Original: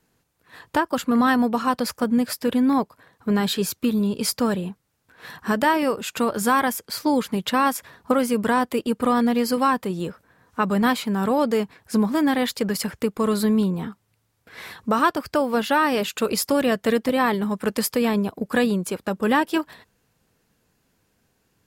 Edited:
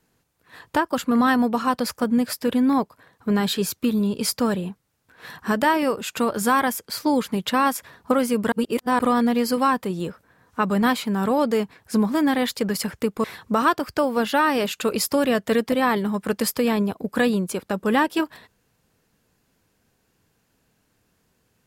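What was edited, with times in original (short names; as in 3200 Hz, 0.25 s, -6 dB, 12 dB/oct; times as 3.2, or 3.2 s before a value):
8.52–8.99 reverse
13.24–14.61 cut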